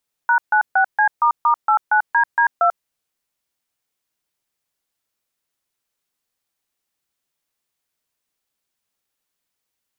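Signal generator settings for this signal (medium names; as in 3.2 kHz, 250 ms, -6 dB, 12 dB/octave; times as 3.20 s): DTMF "#96C**89DD2", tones 91 ms, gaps 141 ms, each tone -14.5 dBFS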